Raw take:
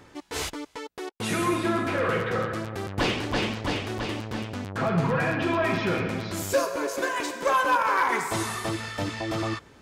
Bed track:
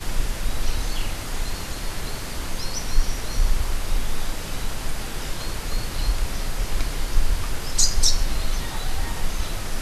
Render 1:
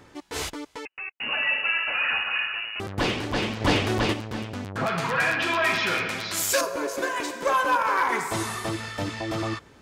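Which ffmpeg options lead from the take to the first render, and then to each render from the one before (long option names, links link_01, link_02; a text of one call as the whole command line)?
ffmpeg -i in.wav -filter_complex "[0:a]asettb=1/sr,asplit=3[link_01][link_02][link_03];[link_01]atrim=end=0.854[link_04];[link_02]atrim=start=0.85:end=2.8,asetpts=PTS-STARTPTS,afade=type=in:duration=0.004:curve=qsin,afade=type=out:start_time=1.946:duration=0.004:curve=qsin,lowpass=frequency=2600:width_type=q:width=0.5098,lowpass=frequency=2600:width_type=q:width=0.6013,lowpass=frequency=2600:width_type=q:width=0.9,lowpass=frequency=2600:width_type=q:width=2.563,afreqshift=-3000[link_05];[link_03]atrim=start=2.796[link_06];[link_04][link_05]acrossfade=duration=0.004:curve1=hsin:curve2=qsin[link_07];[link_07][link_06]acrossfade=duration=0.004:curve1=qsin:curve2=hsin,asplit=3[link_08][link_09][link_10];[link_08]afade=type=out:start_time=3.6:duration=0.02[link_11];[link_09]acontrast=78,afade=type=in:start_time=3.6:duration=0.02,afade=type=out:start_time=4.12:duration=0.02[link_12];[link_10]afade=type=in:start_time=4.12:duration=0.02[link_13];[link_11][link_12][link_13]amix=inputs=3:normalize=0,asettb=1/sr,asplit=3[link_14][link_15][link_16];[link_14]atrim=end=4.864[link_17];[link_15]atrim=start=4.86:end=6.61,asetpts=PTS-STARTPTS,afade=type=in:duration=0.004:curve=qsin,afade=type=out:start_time=1.746:duration=0.004:curve=qsin,tiltshelf=frequency=790:gain=-9.5[link_18];[link_16]atrim=start=6.606[link_19];[link_17][link_18]acrossfade=duration=0.004:curve1=hsin:curve2=qsin[link_20];[link_20][link_19]acrossfade=duration=0.004:curve1=qsin:curve2=hsin" out.wav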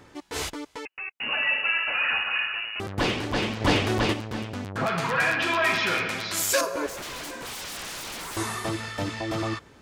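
ffmpeg -i in.wav -filter_complex "[0:a]asettb=1/sr,asplit=3[link_01][link_02][link_03];[link_01]atrim=end=6.864[link_04];[link_02]atrim=start=6.86:end=8.37,asetpts=PTS-STARTPTS,afade=type=in:duration=0.004:curve=qsin,afade=type=out:start_time=1.506:duration=0.004:curve=qsin,aeval=exprs='0.0266*(abs(mod(val(0)/0.0266+3,4)-2)-1)':channel_layout=same[link_05];[link_03]atrim=start=8.366[link_06];[link_04][link_05]acrossfade=duration=0.004:curve1=hsin:curve2=qsin[link_07];[link_07][link_06]acrossfade=duration=0.004:curve1=qsin:curve2=hsin" out.wav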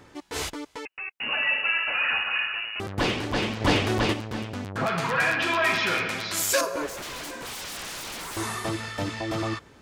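ffmpeg -i in.wav -filter_complex "[0:a]asettb=1/sr,asplit=3[link_01][link_02][link_03];[link_01]atrim=end=6.814[link_04];[link_02]atrim=start=6.81:end=8.43,asetpts=PTS-STARTPTS,afade=type=in:duration=0.004:curve=qsin,afade=type=out:start_time=1.616:duration=0.004:curve=qsin,asoftclip=type=hard:threshold=-25dB[link_05];[link_03]atrim=start=8.426[link_06];[link_04][link_05]acrossfade=duration=0.004:curve1=hsin:curve2=qsin[link_07];[link_07][link_06]acrossfade=duration=0.004:curve1=qsin:curve2=hsin" out.wav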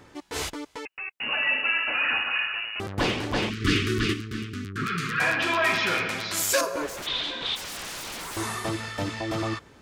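ffmpeg -i in.wav -filter_complex "[0:a]asettb=1/sr,asplit=3[link_01][link_02][link_03];[link_01]atrim=end=1.464[link_04];[link_02]atrim=start=1.46:end=2.31,asetpts=PTS-STARTPTS,afade=type=in:duration=0.004:curve=qsin,afade=type=out:start_time=0.846:duration=0.004:curve=qsin,equalizer=frequency=280:width=2.4:gain=10[link_05];[link_03]atrim=start=2.306[link_06];[link_04][link_05]acrossfade=duration=0.004:curve1=hsin:curve2=qsin[link_07];[link_07][link_06]acrossfade=duration=0.004:curve1=qsin:curve2=hsin,asplit=3[link_08][link_09][link_10];[link_08]afade=type=out:start_time=3.49:duration=0.02[link_11];[link_09]asuperstop=centerf=710:order=12:qfactor=0.94,afade=type=in:start_time=3.49:duration=0.02,afade=type=out:start_time=5.19:duration=0.02[link_12];[link_10]afade=type=in:start_time=5.19:duration=0.02[link_13];[link_11][link_12][link_13]amix=inputs=3:normalize=0,asplit=3[link_14][link_15][link_16];[link_14]afade=type=out:start_time=7.06:duration=0.02[link_17];[link_15]lowpass=frequency=3600:width_type=q:width=8.9,afade=type=in:start_time=7.06:duration=0.02,afade=type=out:start_time=7.55:duration=0.02[link_18];[link_16]afade=type=in:start_time=7.55:duration=0.02[link_19];[link_17][link_18][link_19]amix=inputs=3:normalize=0" out.wav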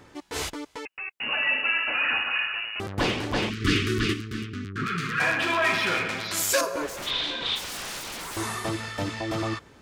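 ffmpeg -i in.wav -filter_complex "[0:a]asettb=1/sr,asplit=3[link_01][link_02][link_03];[link_01]atrim=end=4.464[link_04];[link_02]atrim=start=4.46:end=6.28,asetpts=PTS-STARTPTS,afade=type=in:duration=0.004:curve=qsin,afade=type=out:start_time=1.816:duration=0.004:curve=qsin,adynamicsmooth=sensitivity=6:basefreq=5000[link_05];[link_03]atrim=start=6.276[link_06];[link_04][link_05]acrossfade=duration=0.004:curve1=hsin:curve2=qsin[link_07];[link_07][link_06]acrossfade=duration=0.004:curve1=qsin:curve2=hsin,asettb=1/sr,asplit=3[link_08][link_09][link_10];[link_08]atrim=end=6.964[link_11];[link_09]atrim=start=6.96:end=7.99,asetpts=PTS-STARTPTS,afade=type=in:duration=0.004:curve=qsin,afade=type=out:start_time=1.026:duration=0.004:curve=qsin,asplit=2[link_12][link_13];[link_13]adelay=38,volume=-5dB[link_14];[link_12][link_14]amix=inputs=2:normalize=0,atrim=end_sample=45423[link_15];[link_10]atrim=start=7.986[link_16];[link_11][link_15]acrossfade=duration=0.004:curve1=hsin:curve2=qsin[link_17];[link_17][link_16]acrossfade=duration=0.004:curve1=qsin:curve2=hsin" out.wav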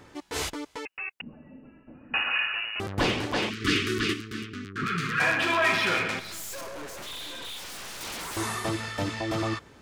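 ffmpeg -i in.wav -filter_complex "[0:a]asettb=1/sr,asplit=3[link_01][link_02][link_03];[link_01]atrim=end=1.214[link_04];[link_02]atrim=start=1.21:end=2.14,asetpts=PTS-STARTPTS,afade=type=in:duration=0.004:curve=qsin,afade=type=out:start_time=0.926:duration=0.004:curve=qsin,lowpass=frequency=200:width_type=q:width=1.8[link_05];[link_03]atrim=start=2.136[link_06];[link_04][link_05]acrossfade=duration=0.004:curve1=hsin:curve2=qsin[link_07];[link_07][link_06]acrossfade=duration=0.004:curve1=qsin:curve2=hsin,asettb=1/sr,asplit=3[link_08][link_09][link_10];[link_08]atrim=end=3.264[link_11];[link_09]atrim=start=3.26:end=4.83,asetpts=PTS-STARTPTS,afade=type=in:duration=0.004:curve=qsin,afade=type=out:start_time=1.566:duration=0.004:curve=qsin,lowshelf=frequency=140:gain=-11.5[link_12];[link_10]atrim=start=4.826[link_13];[link_11][link_12]acrossfade=duration=0.004:curve1=hsin:curve2=qsin[link_14];[link_14][link_13]acrossfade=duration=0.004:curve1=qsin:curve2=hsin,asettb=1/sr,asplit=3[link_15][link_16][link_17];[link_15]atrim=end=6.194[link_18];[link_16]atrim=start=6.19:end=8.01,asetpts=PTS-STARTPTS,afade=type=in:duration=0.004:curve=qsin,afade=type=out:start_time=1.816:duration=0.004:curve=qsin,aeval=exprs='(tanh(70.8*val(0)+0.6)-tanh(0.6))/70.8':channel_layout=same[link_19];[link_17]atrim=start=8.006[link_20];[link_18][link_19]acrossfade=duration=0.004:curve1=hsin:curve2=qsin[link_21];[link_21][link_20]acrossfade=duration=0.004:curve1=qsin:curve2=hsin" out.wav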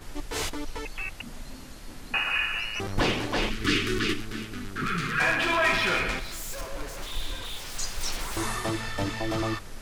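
ffmpeg -i in.wav -i bed.wav -filter_complex "[1:a]volume=-14.5dB[link_01];[0:a][link_01]amix=inputs=2:normalize=0" out.wav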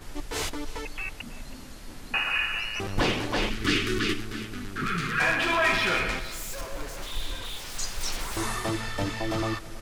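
ffmpeg -i in.wav -af "aecho=1:1:323:0.119" out.wav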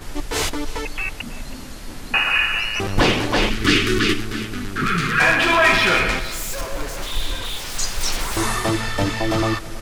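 ffmpeg -i in.wav -af "volume=8.5dB" out.wav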